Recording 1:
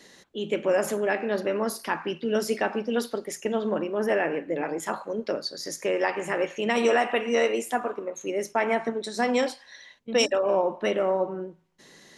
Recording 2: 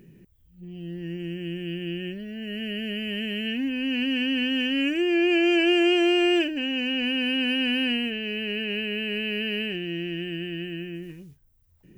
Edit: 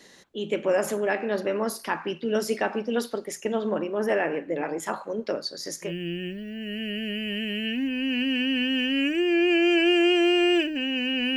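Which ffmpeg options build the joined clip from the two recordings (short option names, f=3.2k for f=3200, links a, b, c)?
-filter_complex "[0:a]apad=whole_dur=11.36,atrim=end=11.36,atrim=end=5.93,asetpts=PTS-STARTPTS[a];[1:a]atrim=start=1.62:end=7.17,asetpts=PTS-STARTPTS[b];[a][b]acrossfade=d=0.12:c1=tri:c2=tri"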